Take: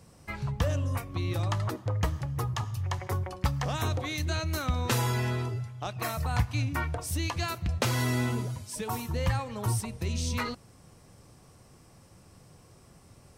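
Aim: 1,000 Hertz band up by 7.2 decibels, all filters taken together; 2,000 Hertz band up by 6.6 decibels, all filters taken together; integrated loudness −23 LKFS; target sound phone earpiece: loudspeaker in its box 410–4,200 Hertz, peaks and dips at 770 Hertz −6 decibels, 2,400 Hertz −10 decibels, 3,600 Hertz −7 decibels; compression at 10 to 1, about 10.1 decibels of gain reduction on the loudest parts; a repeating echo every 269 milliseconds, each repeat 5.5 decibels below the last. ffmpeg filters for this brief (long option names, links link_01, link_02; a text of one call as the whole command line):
ffmpeg -i in.wav -af "equalizer=frequency=1000:width_type=o:gain=8.5,equalizer=frequency=2000:width_type=o:gain=9,acompressor=threshold=-29dB:ratio=10,highpass=410,equalizer=frequency=770:width_type=q:width=4:gain=-6,equalizer=frequency=2400:width_type=q:width=4:gain=-10,equalizer=frequency=3600:width_type=q:width=4:gain=-7,lowpass=frequency=4200:width=0.5412,lowpass=frequency=4200:width=1.3066,aecho=1:1:269|538|807|1076|1345|1614|1883:0.531|0.281|0.149|0.079|0.0419|0.0222|0.0118,volume=14dB" out.wav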